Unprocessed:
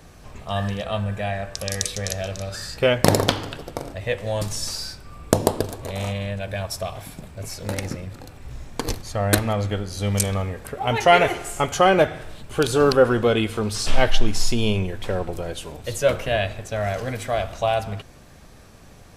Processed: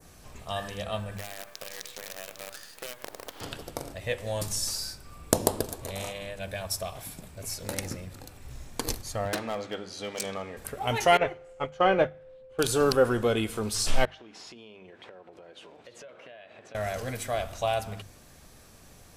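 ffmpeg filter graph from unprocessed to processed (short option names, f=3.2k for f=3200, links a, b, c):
-filter_complex "[0:a]asettb=1/sr,asplit=3[a][b][c];[a]atrim=end=1.174[d];[b]atrim=start=1.17:end=3.41,asetpts=PTS-STARTPTS,afade=t=in:d=0.004:c=qsin,afade=t=out:st=2.236:d=0.004:c=qsin,highpass=370,lowpass=3k,acompressor=threshold=-31dB:ratio=12:attack=3.2:release=140:knee=1:detection=peak,acrusher=bits=6:dc=4:mix=0:aa=0.000001[e];[c]atrim=start=3.406[f];[d][e]acrossfade=d=0.004:c1=hsin:c2=qsin[g];[g][f]acrossfade=d=0.004:c1=qsin:c2=hsin,asettb=1/sr,asplit=3[h][i][j];[h]atrim=end=9.254[k];[i]atrim=start=9.25:end=10.57,asetpts=PTS-STARTPTS,afade=t=in:d=0.004:c=qsin,afade=t=out:st=1.316:d=0.004:c=qsin,highpass=240,lowpass=4.8k,asoftclip=type=hard:threshold=-19dB[l];[j]atrim=start=10.566[m];[k][l]acrossfade=d=0.004:c1=hsin:c2=qsin[n];[n][m]acrossfade=d=0.004:c1=qsin:c2=hsin,asettb=1/sr,asplit=3[o][p][q];[o]atrim=end=11.174[r];[p]atrim=start=11.17:end=12.59,asetpts=PTS-STARTPTS,afade=t=in:d=0.004:c=qsin,afade=t=out:st=1.416:d=0.004:c=qsin,lowpass=2.9k,aeval=exprs='val(0)+0.0708*sin(2*PI*520*n/s)':c=same,agate=range=-33dB:threshold=-15dB:ratio=3:release=100:detection=peak[s];[q]atrim=start=12.586[t];[r][s]acrossfade=d=0.004:c1=hsin:c2=qsin[u];[u][t]acrossfade=d=0.004:c1=qsin:c2=hsin,asettb=1/sr,asplit=3[v][w][x];[v]atrim=end=14.054[y];[w]atrim=start=14.05:end=16.75,asetpts=PTS-STARTPTS,afade=t=in:d=0.004:c=qsin,afade=t=out:st=2.696:d=0.004:c=qsin,highpass=280,lowpass=2.7k,acompressor=threshold=-39dB:ratio=8:attack=3.2:release=140:knee=1:detection=peak[z];[x]atrim=start=16.746[aa];[y][z]acrossfade=d=0.004:c1=hsin:c2=qsin[ab];[ab][aa]acrossfade=d=0.004:c1=qsin:c2=hsin,aemphasis=mode=production:type=cd,bandreject=f=50:t=h:w=6,bandreject=f=100:t=h:w=6,bandreject=f=150:t=h:w=6,bandreject=f=200:t=h:w=6,adynamicequalizer=threshold=0.0158:dfrequency=3400:dqfactor=0.88:tfrequency=3400:tqfactor=0.88:attack=5:release=100:ratio=0.375:range=2:mode=cutabove:tftype=bell,volume=-6dB"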